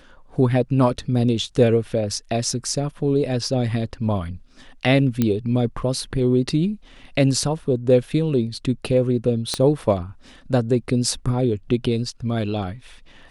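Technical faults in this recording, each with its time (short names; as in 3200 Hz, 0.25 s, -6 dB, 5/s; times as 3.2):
5.22 pop -7 dBFS
9.54 pop -9 dBFS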